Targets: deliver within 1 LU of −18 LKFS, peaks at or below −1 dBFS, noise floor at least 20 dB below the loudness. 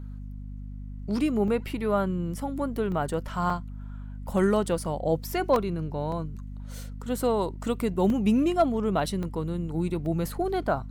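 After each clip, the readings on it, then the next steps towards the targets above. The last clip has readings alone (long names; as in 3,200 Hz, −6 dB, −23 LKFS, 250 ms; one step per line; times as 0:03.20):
number of dropouts 8; longest dropout 1.9 ms; mains hum 50 Hz; hum harmonics up to 250 Hz; level of the hum −35 dBFS; integrated loudness −27.5 LKFS; sample peak −12.5 dBFS; target loudness −18.0 LKFS
→ repair the gap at 0:01.48/0:02.92/0:03.50/0:05.56/0:06.12/0:08.10/0:09.23/0:10.06, 1.9 ms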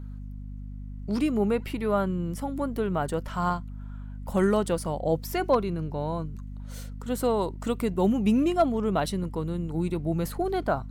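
number of dropouts 0; mains hum 50 Hz; hum harmonics up to 250 Hz; level of the hum −35 dBFS
→ mains-hum notches 50/100/150/200/250 Hz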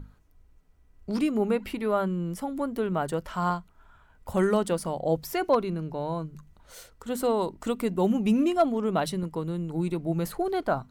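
mains hum none found; integrated loudness −28.0 LKFS; sample peak −12.5 dBFS; target loudness −18.0 LKFS
→ level +10 dB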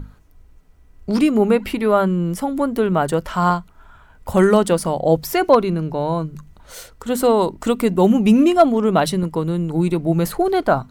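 integrated loudness −18.0 LKFS; sample peak −2.5 dBFS; background noise floor −49 dBFS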